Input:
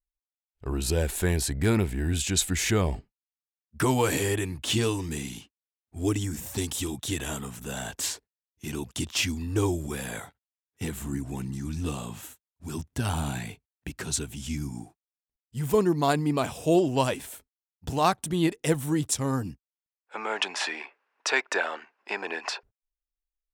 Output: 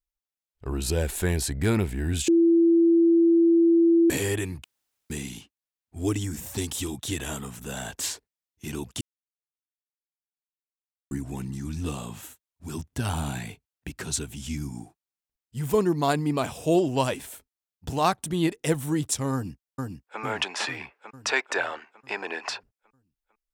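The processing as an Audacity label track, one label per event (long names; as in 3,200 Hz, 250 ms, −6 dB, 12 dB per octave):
2.280000	4.100000	beep over 335 Hz −15 dBFS
4.640000	5.100000	fill with room tone
9.010000	11.110000	silence
19.330000	20.200000	delay throw 450 ms, feedback 55%, level −3 dB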